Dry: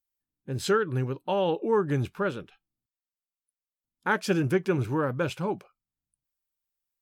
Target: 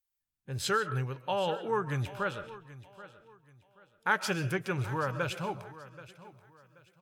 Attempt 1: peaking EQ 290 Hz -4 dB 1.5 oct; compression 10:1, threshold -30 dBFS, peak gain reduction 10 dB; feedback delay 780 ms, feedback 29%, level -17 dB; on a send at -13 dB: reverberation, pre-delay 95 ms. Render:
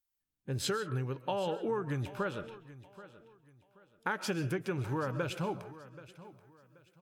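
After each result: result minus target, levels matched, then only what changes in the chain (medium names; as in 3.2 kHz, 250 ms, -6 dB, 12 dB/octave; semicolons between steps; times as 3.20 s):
compression: peak gain reduction +10 dB; 250 Hz band +3.5 dB
remove: compression 10:1, threshold -30 dBFS, peak gain reduction 10 dB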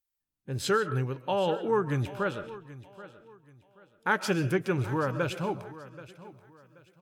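250 Hz band +3.0 dB
change: peaking EQ 290 Hz -13 dB 1.5 oct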